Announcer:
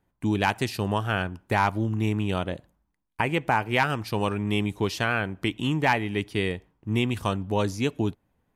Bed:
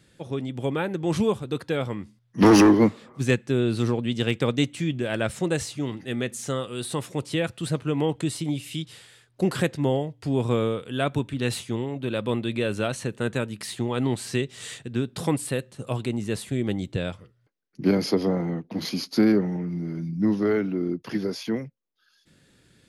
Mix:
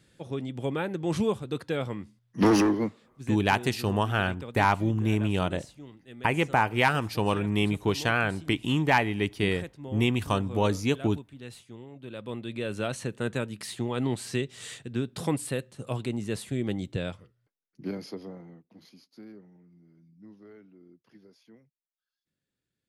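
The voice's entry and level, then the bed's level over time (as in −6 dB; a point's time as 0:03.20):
3.05 s, 0.0 dB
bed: 0:02.33 −3.5 dB
0:03.32 −17 dB
0:11.75 −17 dB
0:12.91 −3.5 dB
0:17.10 −3.5 dB
0:19.12 −28 dB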